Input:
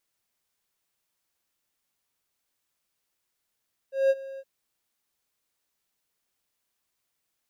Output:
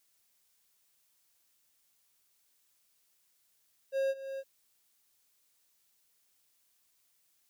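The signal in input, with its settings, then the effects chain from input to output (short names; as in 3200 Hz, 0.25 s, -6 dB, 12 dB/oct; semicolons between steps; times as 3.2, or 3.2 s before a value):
ADSR triangle 540 Hz, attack 0.181 s, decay 40 ms, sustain -19.5 dB, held 0.47 s, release 47 ms -14.5 dBFS
compressor 6:1, threshold -30 dBFS; high shelf 3000 Hz +9 dB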